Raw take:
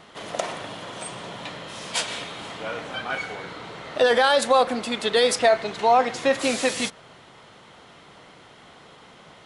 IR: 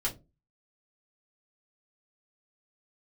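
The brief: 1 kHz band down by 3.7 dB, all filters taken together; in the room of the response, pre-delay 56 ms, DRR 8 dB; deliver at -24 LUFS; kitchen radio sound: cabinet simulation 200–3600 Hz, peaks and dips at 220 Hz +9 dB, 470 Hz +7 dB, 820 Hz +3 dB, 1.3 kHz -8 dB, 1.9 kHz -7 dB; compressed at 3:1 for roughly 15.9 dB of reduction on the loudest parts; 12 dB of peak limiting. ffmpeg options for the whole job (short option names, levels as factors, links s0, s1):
-filter_complex "[0:a]equalizer=f=1000:t=o:g=-7.5,acompressor=threshold=0.0112:ratio=3,alimiter=level_in=2.82:limit=0.0631:level=0:latency=1,volume=0.355,asplit=2[s0][s1];[1:a]atrim=start_sample=2205,adelay=56[s2];[s1][s2]afir=irnorm=-1:irlink=0,volume=0.224[s3];[s0][s3]amix=inputs=2:normalize=0,highpass=200,equalizer=f=220:t=q:w=4:g=9,equalizer=f=470:t=q:w=4:g=7,equalizer=f=820:t=q:w=4:g=3,equalizer=f=1300:t=q:w=4:g=-8,equalizer=f=1900:t=q:w=4:g=-7,lowpass=f=3600:w=0.5412,lowpass=f=3600:w=1.3066,volume=7.5"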